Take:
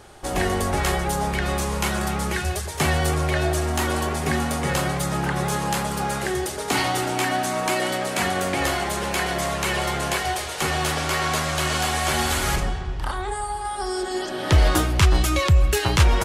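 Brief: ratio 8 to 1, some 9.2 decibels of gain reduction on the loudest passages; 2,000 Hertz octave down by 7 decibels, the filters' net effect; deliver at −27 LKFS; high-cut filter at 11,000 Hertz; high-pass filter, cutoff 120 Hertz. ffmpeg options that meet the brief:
ffmpeg -i in.wav -af "highpass=120,lowpass=11000,equalizer=frequency=2000:width_type=o:gain=-9,acompressor=threshold=-26dB:ratio=8,volume=3dB" out.wav

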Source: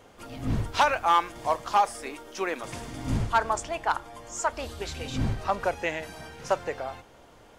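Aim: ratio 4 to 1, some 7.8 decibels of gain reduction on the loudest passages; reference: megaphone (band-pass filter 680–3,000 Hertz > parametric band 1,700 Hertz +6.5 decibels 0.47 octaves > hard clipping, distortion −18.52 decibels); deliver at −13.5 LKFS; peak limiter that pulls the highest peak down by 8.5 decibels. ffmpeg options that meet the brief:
ffmpeg -i in.wav -af "acompressor=threshold=-26dB:ratio=4,alimiter=limit=-24dB:level=0:latency=1,highpass=680,lowpass=3000,equalizer=frequency=1700:width_type=o:width=0.47:gain=6.5,asoftclip=type=hard:threshold=-26dB,volume=24.5dB" out.wav

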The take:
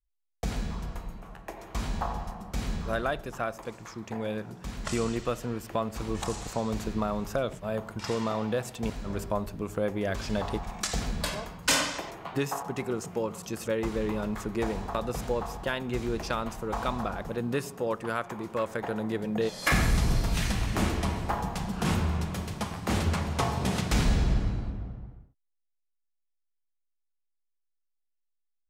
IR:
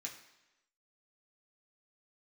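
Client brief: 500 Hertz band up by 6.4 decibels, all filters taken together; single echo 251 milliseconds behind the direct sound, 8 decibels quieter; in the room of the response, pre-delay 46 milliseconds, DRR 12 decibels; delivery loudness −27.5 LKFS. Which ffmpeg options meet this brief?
-filter_complex "[0:a]equalizer=frequency=500:width_type=o:gain=7.5,aecho=1:1:251:0.398,asplit=2[link_01][link_02];[1:a]atrim=start_sample=2205,adelay=46[link_03];[link_02][link_03]afir=irnorm=-1:irlink=0,volume=-9.5dB[link_04];[link_01][link_04]amix=inputs=2:normalize=0"

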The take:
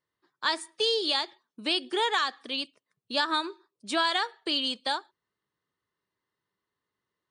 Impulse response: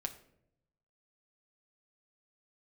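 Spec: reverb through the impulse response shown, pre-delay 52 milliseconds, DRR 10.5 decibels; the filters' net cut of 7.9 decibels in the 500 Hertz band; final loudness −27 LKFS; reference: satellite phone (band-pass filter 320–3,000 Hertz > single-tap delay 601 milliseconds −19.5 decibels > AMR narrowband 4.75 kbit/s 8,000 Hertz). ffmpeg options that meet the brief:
-filter_complex "[0:a]equalizer=frequency=500:width_type=o:gain=-9,asplit=2[link_01][link_02];[1:a]atrim=start_sample=2205,adelay=52[link_03];[link_02][link_03]afir=irnorm=-1:irlink=0,volume=-10dB[link_04];[link_01][link_04]amix=inputs=2:normalize=0,highpass=320,lowpass=3000,aecho=1:1:601:0.106,volume=7.5dB" -ar 8000 -c:a libopencore_amrnb -b:a 4750

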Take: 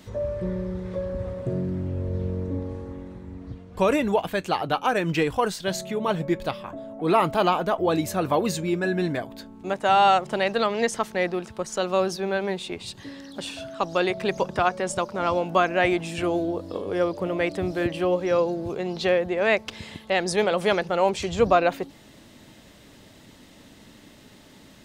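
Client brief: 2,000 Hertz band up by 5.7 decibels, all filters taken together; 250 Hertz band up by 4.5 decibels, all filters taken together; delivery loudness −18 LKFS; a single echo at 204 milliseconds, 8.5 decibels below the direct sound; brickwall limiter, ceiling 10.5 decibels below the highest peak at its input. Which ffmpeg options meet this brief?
ffmpeg -i in.wav -af "equalizer=frequency=250:width_type=o:gain=7,equalizer=frequency=2000:width_type=o:gain=7,alimiter=limit=-13.5dB:level=0:latency=1,aecho=1:1:204:0.376,volume=7dB" out.wav

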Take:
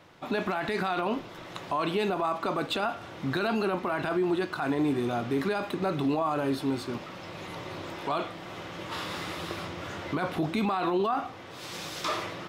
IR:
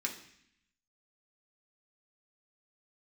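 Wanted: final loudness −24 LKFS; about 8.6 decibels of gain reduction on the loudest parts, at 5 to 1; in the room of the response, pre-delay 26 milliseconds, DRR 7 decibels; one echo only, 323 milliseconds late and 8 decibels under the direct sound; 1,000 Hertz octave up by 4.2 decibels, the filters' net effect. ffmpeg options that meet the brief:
-filter_complex "[0:a]equalizer=frequency=1000:width_type=o:gain=5.5,acompressor=threshold=-31dB:ratio=5,aecho=1:1:323:0.398,asplit=2[link_01][link_02];[1:a]atrim=start_sample=2205,adelay=26[link_03];[link_02][link_03]afir=irnorm=-1:irlink=0,volume=-9.5dB[link_04];[link_01][link_04]amix=inputs=2:normalize=0,volume=10dB"

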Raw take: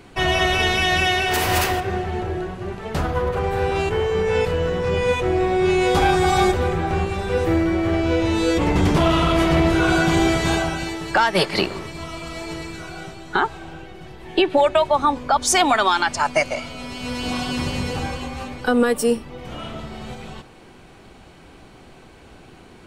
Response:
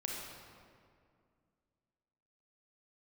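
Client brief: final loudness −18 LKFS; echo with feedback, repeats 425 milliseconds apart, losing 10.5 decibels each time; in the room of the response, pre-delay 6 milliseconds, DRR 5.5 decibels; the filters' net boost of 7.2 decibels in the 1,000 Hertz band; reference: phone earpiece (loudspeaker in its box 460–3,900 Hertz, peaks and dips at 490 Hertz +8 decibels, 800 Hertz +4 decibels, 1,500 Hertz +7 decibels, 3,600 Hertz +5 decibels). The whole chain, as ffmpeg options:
-filter_complex "[0:a]equalizer=frequency=1000:width_type=o:gain=5.5,aecho=1:1:425|850|1275:0.299|0.0896|0.0269,asplit=2[link_01][link_02];[1:a]atrim=start_sample=2205,adelay=6[link_03];[link_02][link_03]afir=irnorm=-1:irlink=0,volume=-7dB[link_04];[link_01][link_04]amix=inputs=2:normalize=0,highpass=460,equalizer=frequency=490:width_type=q:width=4:gain=8,equalizer=frequency=800:width_type=q:width=4:gain=4,equalizer=frequency=1500:width_type=q:width=4:gain=7,equalizer=frequency=3600:width_type=q:width=4:gain=5,lowpass=frequency=3900:width=0.5412,lowpass=frequency=3900:width=1.3066,volume=-3dB"

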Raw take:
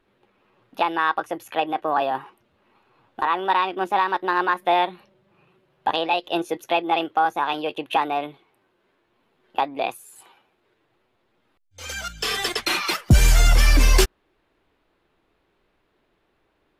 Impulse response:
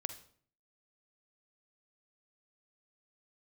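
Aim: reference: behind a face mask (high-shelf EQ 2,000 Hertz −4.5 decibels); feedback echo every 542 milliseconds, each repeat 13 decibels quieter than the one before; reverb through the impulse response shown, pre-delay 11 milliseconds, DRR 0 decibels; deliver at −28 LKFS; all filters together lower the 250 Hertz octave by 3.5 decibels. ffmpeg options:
-filter_complex "[0:a]equalizer=frequency=250:width_type=o:gain=-5.5,aecho=1:1:542|1084|1626:0.224|0.0493|0.0108,asplit=2[link_01][link_02];[1:a]atrim=start_sample=2205,adelay=11[link_03];[link_02][link_03]afir=irnorm=-1:irlink=0,volume=1dB[link_04];[link_01][link_04]amix=inputs=2:normalize=0,highshelf=frequency=2000:gain=-4.5,volume=-6dB"

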